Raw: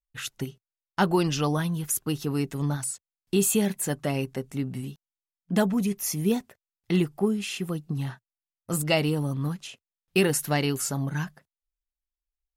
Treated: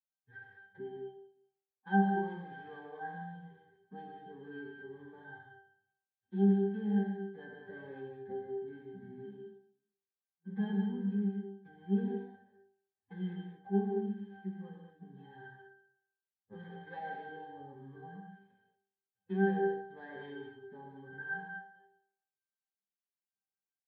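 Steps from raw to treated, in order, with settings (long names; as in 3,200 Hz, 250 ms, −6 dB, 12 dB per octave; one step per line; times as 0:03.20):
gap after every zero crossing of 0.16 ms
dynamic equaliser 400 Hz, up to −6 dB, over −41 dBFS, Q 4.6
in parallel at +0.5 dB: downward compressor 6 to 1, threshold −34 dBFS, peak gain reduction 15 dB
on the sum: phase-vocoder stretch with locked phases 1.9×
loudspeaker in its box 170–3,400 Hz, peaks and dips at 190 Hz −4 dB, 1,700 Hz +8 dB, 3,000 Hz −6 dB
resonances in every octave G, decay 0.57 s
on a send: repeating echo 192 ms, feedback 37%, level −24 dB
on the sum: reverb whose tail is shaped and stops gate 250 ms flat, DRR −0.5 dB
level +5 dB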